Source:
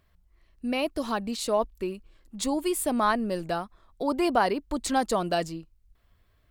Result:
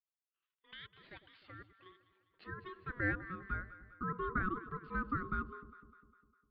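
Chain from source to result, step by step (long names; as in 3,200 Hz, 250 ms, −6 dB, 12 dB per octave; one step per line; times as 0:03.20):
downward expander −52 dBFS
band-pass filter sweep 2,400 Hz → 540 Hz, 0:00.99–0:04.14
dynamic equaliser 1,800 Hz, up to −6 dB, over −50 dBFS, Q 2.3
0:00.71–0:01.86: output level in coarse steps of 11 dB
Chebyshev band-pass filter 270–3,600 Hz, order 5
ring modulation 740 Hz
delay that swaps between a low-pass and a high-pass 101 ms, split 930 Hz, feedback 72%, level −12 dB
level −3 dB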